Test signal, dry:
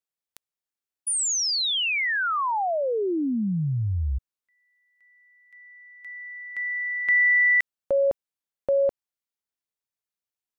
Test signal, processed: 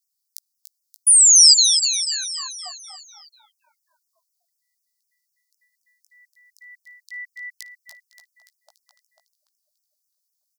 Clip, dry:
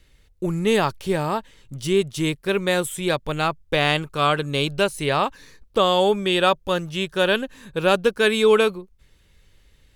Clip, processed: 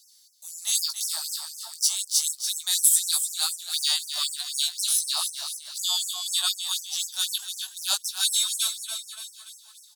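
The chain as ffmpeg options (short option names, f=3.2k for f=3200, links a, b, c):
-filter_complex "[0:a]highshelf=f=3.4k:t=q:w=3:g=12,asplit=2[a][b];[b]aecho=0:1:288|576|864|1152|1440|1728:0.398|0.203|0.104|0.0528|0.0269|0.0137[c];[a][c]amix=inputs=2:normalize=0,flanger=delay=16.5:depth=2.9:speed=0.23,crystalizer=i=4.5:c=0,afftfilt=real='re*gte(b*sr/1024,600*pow(5300/600,0.5+0.5*sin(2*PI*4*pts/sr)))':imag='im*gte(b*sr/1024,600*pow(5300/600,0.5+0.5*sin(2*PI*4*pts/sr)))':win_size=1024:overlap=0.75,volume=-12dB"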